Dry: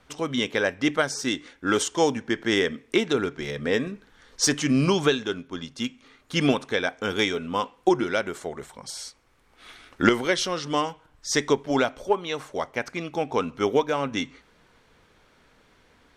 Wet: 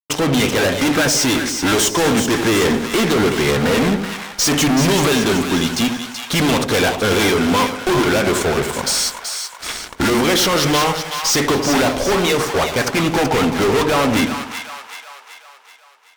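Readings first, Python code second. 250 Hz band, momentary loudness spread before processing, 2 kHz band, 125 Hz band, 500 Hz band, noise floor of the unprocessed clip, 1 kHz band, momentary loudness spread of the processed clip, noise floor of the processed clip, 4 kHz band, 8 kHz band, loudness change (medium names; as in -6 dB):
+9.5 dB, 11 LU, +9.0 dB, +11.5 dB, +7.5 dB, -61 dBFS, +9.5 dB, 8 LU, -44 dBFS, +11.0 dB, +12.5 dB, +9.0 dB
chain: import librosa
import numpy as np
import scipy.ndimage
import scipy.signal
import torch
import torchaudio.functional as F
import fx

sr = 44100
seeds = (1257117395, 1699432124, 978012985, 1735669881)

y = fx.fuzz(x, sr, gain_db=39.0, gate_db=-48.0)
y = fx.echo_split(y, sr, split_hz=780.0, low_ms=88, high_ms=379, feedback_pct=52, wet_db=-7)
y = y * librosa.db_to_amplitude(-1.5)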